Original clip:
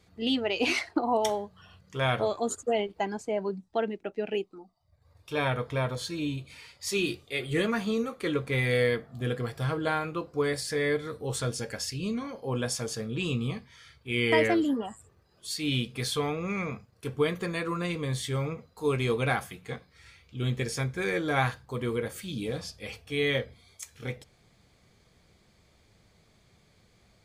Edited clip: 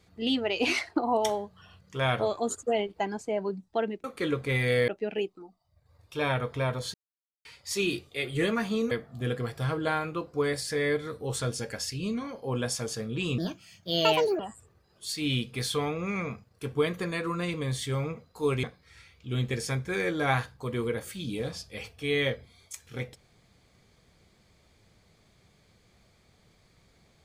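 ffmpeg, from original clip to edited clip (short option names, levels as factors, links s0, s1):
-filter_complex "[0:a]asplit=9[s0][s1][s2][s3][s4][s5][s6][s7][s8];[s0]atrim=end=4.042[s9];[s1]atrim=start=8.068:end=8.912[s10];[s2]atrim=start=4.038:end=6.1,asetpts=PTS-STARTPTS,afade=t=out:st=2.058:d=0.004:c=hsin[s11];[s3]atrim=start=6.1:end=6.61,asetpts=PTS-STARTPTS,volume=0[s12];[s4]atrim=start=6.61:end=8.072,asetpts=PTS-STARTPTS,afade=t=in:d=0.004:c=hsin[s13];[s5]atrim=start=8.908:end=13.384[s14];[s6]atrim=start=13.38:end=14.81,asetpts=PTS-STARTPTS,asetrate=62181,aresample=44100[s15];[s7]atrim=start=14.806:end=19.052[s16];[s8]atrim=start=19.718[s17];[s9][s10]acrossfade=d=0.004:c1=hsin:c2=hsin[s18];[s11][s12][s13]concat=n=3:v=0:a=1[s19];[s18][s19]acrossfade=d=0.004:c1=hsin:c2=hsin[s20];[s20][s14]acrossfade=d=0.004:c1=hsin:c2=hsin[s21];[s21][s15]acrossfade=d=0.004:c1=hsin:c2=hsin[s22];[s22][s16]acrossfade=d=0.004:c1=hsin:c2=hsin[s23];[s23][s17]acrossfade=d=0.004:c1=hsin:c2=hsin"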